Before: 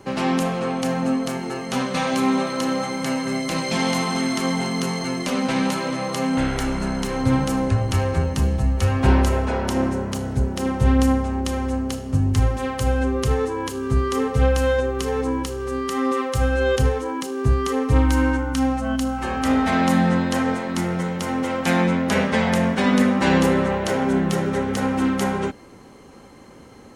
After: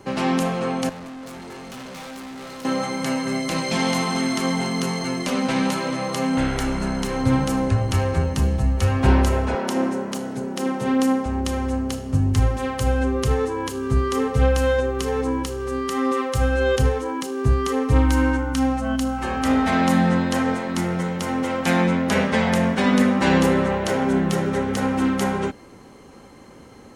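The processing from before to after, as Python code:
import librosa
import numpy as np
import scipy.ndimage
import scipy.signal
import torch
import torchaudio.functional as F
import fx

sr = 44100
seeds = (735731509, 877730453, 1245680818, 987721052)

y = fx.tube_stage(x, sr, drive_db=35.0, bias=0.55, at=(0.89, 2.65))
y = fx.highpass(y, sr, hz=180.0, slope=24, at=(9.55, 11.26))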